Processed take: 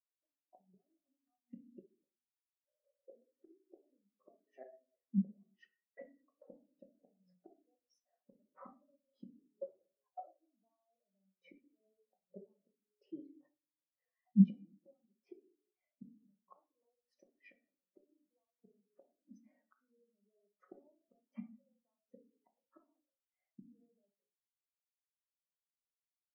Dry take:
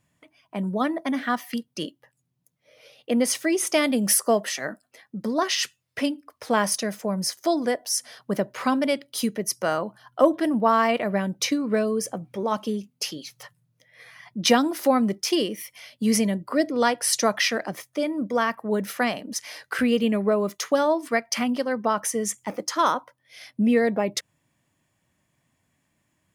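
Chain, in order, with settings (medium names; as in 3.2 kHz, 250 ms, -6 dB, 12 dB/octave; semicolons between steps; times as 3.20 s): hum notches 60/120/180/240/300/360/420/480/540 Hz; peak limiter -16.5 dBFS, peak gain reduction 9.5 dB; band-pass filter 500 Hz, Q 0.84; inverted gate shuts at -27 dBFS, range -28 dB; simulated room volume 350 m³, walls mixed, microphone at 1 m; spectral contrast expander 2.5:1; trim +7.5 dB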